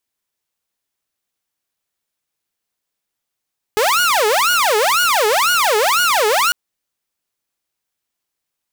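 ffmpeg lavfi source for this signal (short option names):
-f lavfi -i "aevalsrc='0.316*(2*mod((933.5*t-516.5/(2*PI*2)*sin(2*PI*2*t)),1)-1)':d=2.75:s=44100"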